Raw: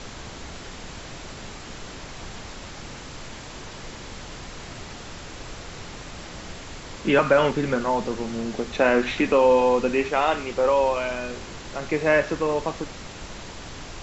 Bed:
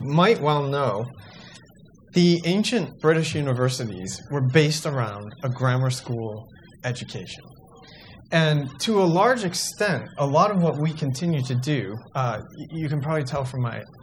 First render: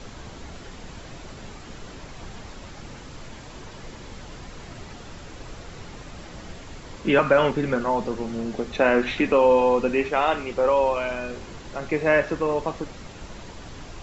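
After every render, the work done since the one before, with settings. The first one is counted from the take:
broadband denoise 6 dB, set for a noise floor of −39 dBFS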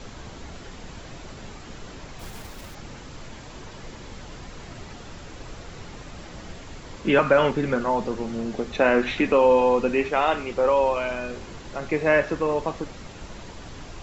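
0:02.19–0:02.76: one scale factor per block 3 bits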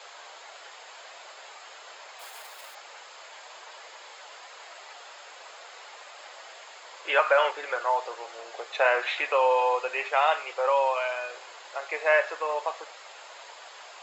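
inverse Chebyshev high-pass filter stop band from 230 Hz, stop band 50 dB
notch filter 5,800 Hz, Q 6.7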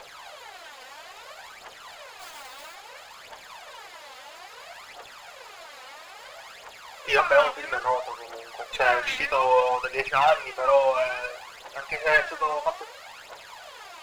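phase shifter 0.6 Hz, delay 4 ms, feedback 66%
windowed peak hold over 3 samples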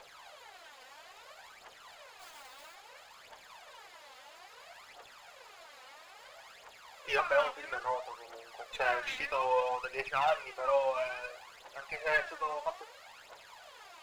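level −9.5 dB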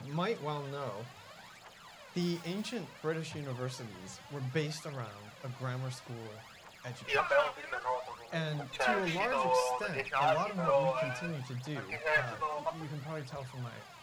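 mix in bed −16.5 dB

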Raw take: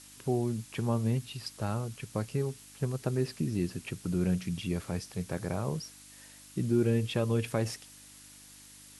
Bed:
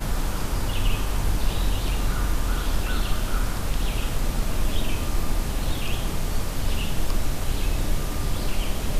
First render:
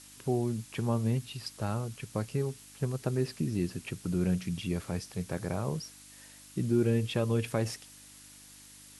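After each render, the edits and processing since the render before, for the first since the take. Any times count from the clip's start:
no processing that can be heard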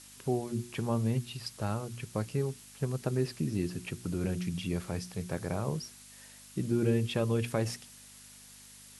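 hum removal 60 Hz, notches 6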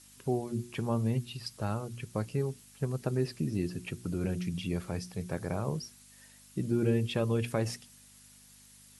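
broadband denoise 6 dB, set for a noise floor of −53 dBFS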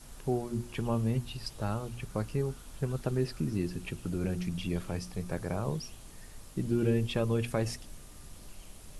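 mix in bed −24.5 dB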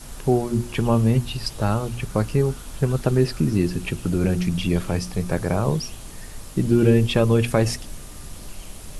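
level +11.5 dB

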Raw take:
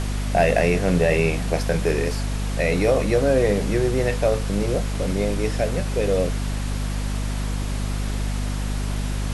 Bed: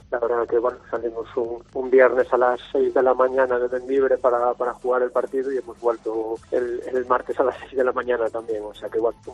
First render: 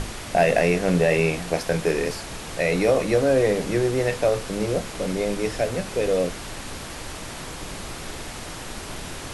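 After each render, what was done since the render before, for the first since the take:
mains-hum notches 50/100/150/200/250 Hz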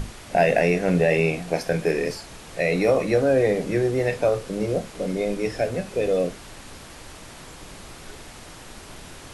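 noise reduction from a noise print 7 dB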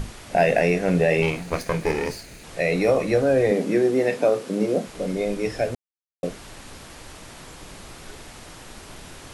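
0:01.22–0:02.44: lower of the sound and its delayed copy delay 0.45 ms
0:03.51–0:04.87: high-pass with resonance 230 Hz, resonance Q 1.9
0:05.75–0:06.23: silence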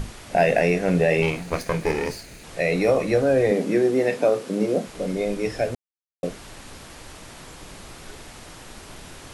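no processing that can be heard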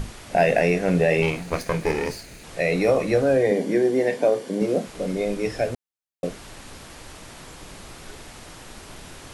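0:03.37–0:04.62: notch comb filter 1,300 Hz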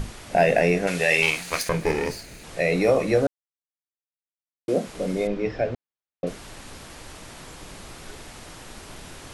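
0:00.87–0:01.69: tilt shelving filter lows −10 dB
0:03.27–0:04.68: silence
0:05.27–0:06.27: high-frequency loss of the air 210 metres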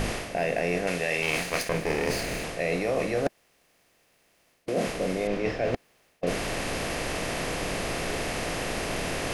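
compressor on every frequency bin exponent 0.6
reversed playback
downward compressor 6 to 1, threshold −24 dBFS, peak gain reduction 12.5 dB
reversed playback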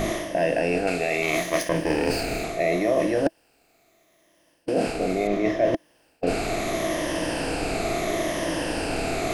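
rippled gain that drifts along the octave scale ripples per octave 1.2, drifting −0.74 Hz, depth 9 dB
hollow resonant body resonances 320/650 Hz, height 10 dB, ringing for 40 ms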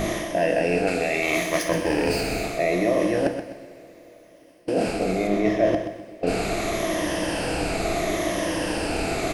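on a send: repeating echo 127 ms, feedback 34%, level −9 dB
on the sum: coupled-rooms reverb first 0.5 s, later 4.6 s, from −18 dB, DRR 8 dB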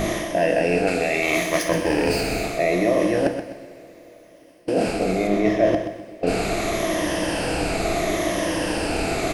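level +2 dB

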